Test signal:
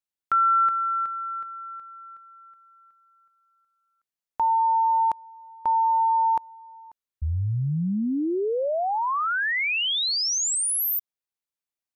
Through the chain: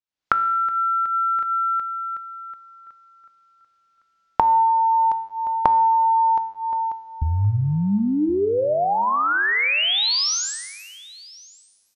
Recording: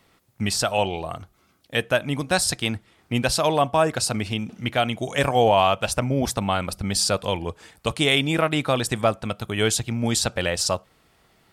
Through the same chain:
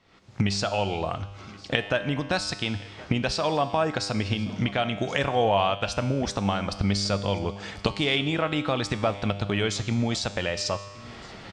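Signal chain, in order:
camcorder AGC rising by 63 dB per second, up to +22 dB
low-pass filter 6,100 Hz 24 dB per octave
tuned comb filter 100 Hz, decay 1.4 s, harmonics all, mix 70%
single-tap delay 1,073 ms −22 dB
level +4.5 dB

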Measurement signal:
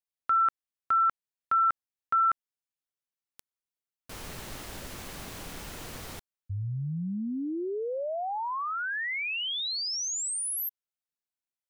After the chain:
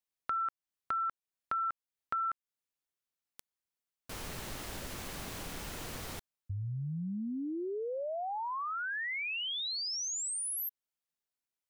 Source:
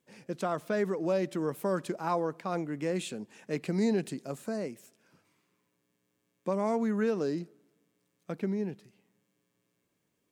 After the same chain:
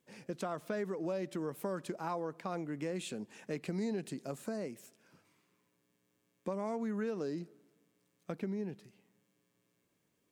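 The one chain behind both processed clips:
downward compressor 2.5 to 1, threshold −37 dBFS

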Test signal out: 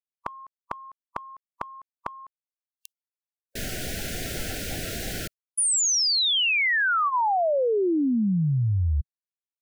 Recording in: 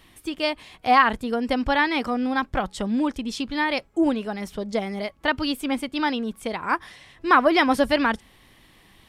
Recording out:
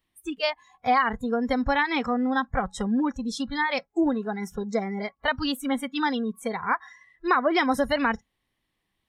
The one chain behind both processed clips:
downward compressor 4 to 1, threshold −18 dBFS
noise reduction from a noise print of the clip's start 24 dB

